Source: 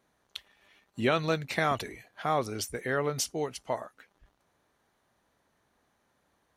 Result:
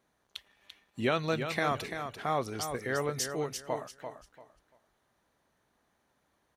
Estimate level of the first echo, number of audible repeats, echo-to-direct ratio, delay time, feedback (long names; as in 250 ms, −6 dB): −8.0 dB, 3, −7.5 dB, 341 ms, 24%